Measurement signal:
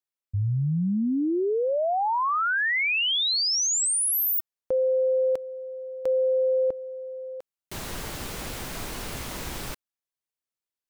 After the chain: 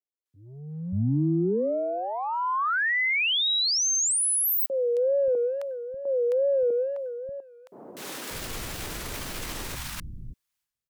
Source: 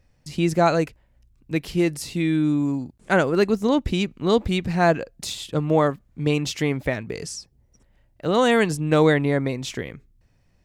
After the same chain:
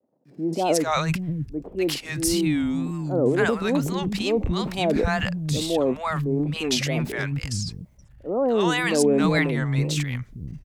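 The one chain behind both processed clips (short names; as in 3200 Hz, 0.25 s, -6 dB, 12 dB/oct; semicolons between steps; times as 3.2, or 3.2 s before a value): transient shaper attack -5 dB, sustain +11 dB; three bands offset in time mids, highs, lows 0.26/0.58 s, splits 210/760 Hz; wow and flutter 140 cents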